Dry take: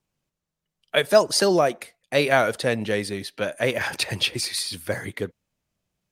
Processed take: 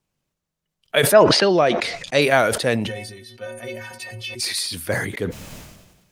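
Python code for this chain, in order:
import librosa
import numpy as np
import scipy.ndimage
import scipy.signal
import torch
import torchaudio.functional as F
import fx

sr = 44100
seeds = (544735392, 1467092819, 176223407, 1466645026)

y = fx.lowpass_res(x, sr, hz=fx.line((1.12, 2000.0), (2.2, 7400.0)), q=1.7, at=(1.12, 2.2), fade=0.02)
y = fx.stiff_resonator(y, sr, f0_hz=110.0, decay_s=0.48, stiffness=0.03, at=(2.86, 4.39), fade=0.02)
y = fx.sustainer(y, sr, db_per_s=47.0)
y = y * librosa.db_to_amplitude(2.0)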